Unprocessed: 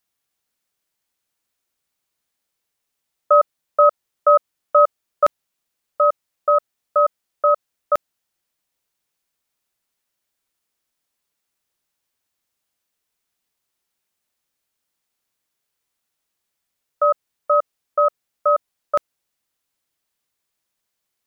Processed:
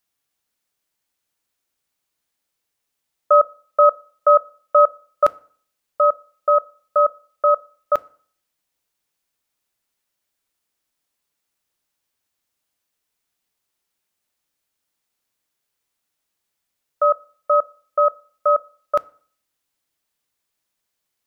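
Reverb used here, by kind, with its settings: FDN reverb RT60 0.5 s, low-frequency decay 1.05×, high-frequency decay 0.8×, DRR 17.5 dB

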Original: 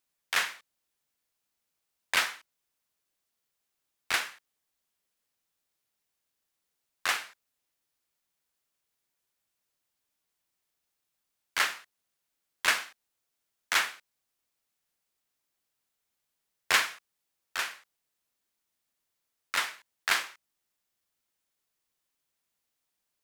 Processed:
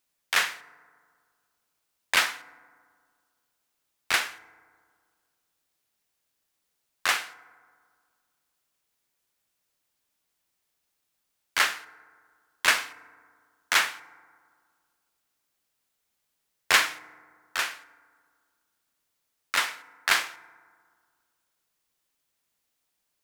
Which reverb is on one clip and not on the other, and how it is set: FDN reverb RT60 1.9 s, low-frequency decay 1.1×, high-frequency decay 0.35×, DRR 17 dB; gain +4 dB

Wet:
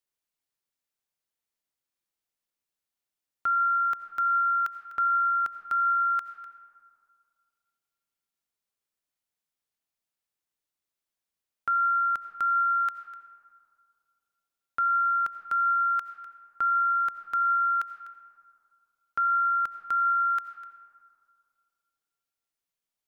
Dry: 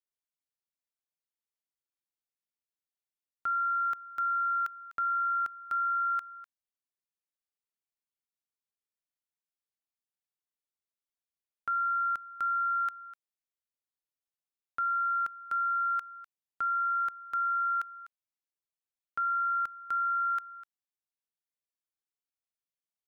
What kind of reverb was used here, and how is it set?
digital reverb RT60 2.4 s, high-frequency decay 0.35×, pre-delay 45 ms, DRR 10 dB; gain +5 dB

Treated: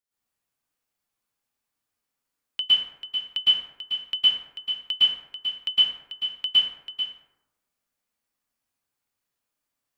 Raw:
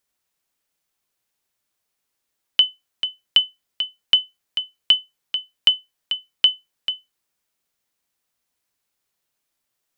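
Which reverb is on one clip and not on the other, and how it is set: plate-style reverb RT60 0.96 s, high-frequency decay 0.45×, pre-delay 0.1 s, DRR -10 dB; gain -14 dB

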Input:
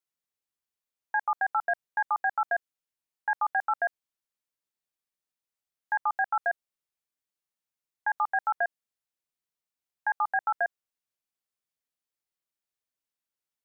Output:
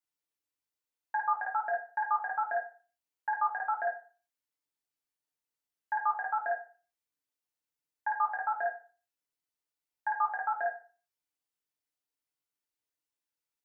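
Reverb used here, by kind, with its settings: FDN reverb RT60 0.38 s, low-frequency decay 0.85×, high-frequency decay 0.9×, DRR -2.5 dB; gain -6 dB

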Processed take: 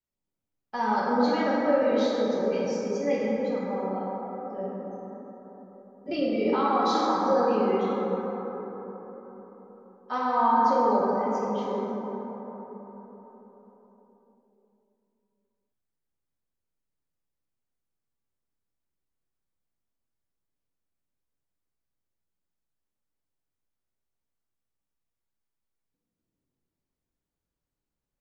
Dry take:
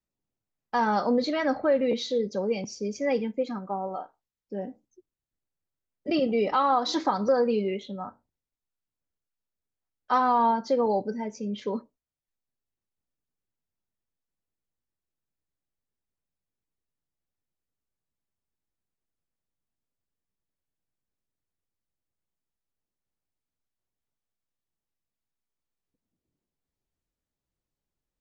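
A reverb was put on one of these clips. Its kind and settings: plate-style reverb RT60 4.5 s, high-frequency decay 0.3×, DRR -6.5 dB; gain -7 dB

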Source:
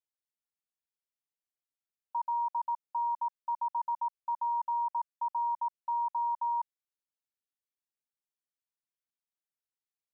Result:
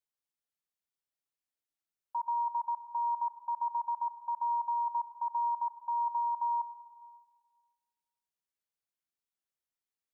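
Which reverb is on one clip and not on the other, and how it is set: digital reverb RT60 1.7 s, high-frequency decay 0.3×, pre-delay 40 ms, DRR 11.5 dB; gain -1 dB

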